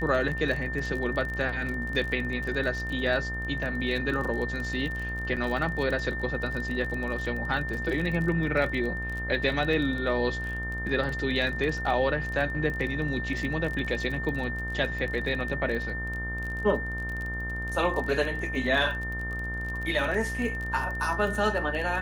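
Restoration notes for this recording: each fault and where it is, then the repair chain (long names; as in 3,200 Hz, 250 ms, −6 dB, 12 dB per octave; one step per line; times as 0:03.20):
mains buzz 60 Hz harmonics 37 −35 dBFS
surface crackle 27 per second −32 dBFS
whistle 1,800 Hz −33 dBFS
0:05.36–0:05.37: drop-out 7.7 ms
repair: click removal
hum removal 60 Hz, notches 37
notch filter 1,800 Hz, Q 30
repair the gap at 0:05.36, 7.7 ms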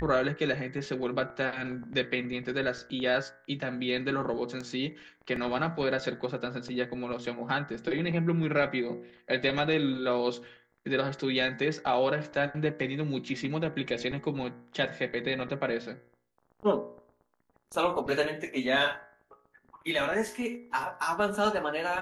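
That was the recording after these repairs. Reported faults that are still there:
none of them is left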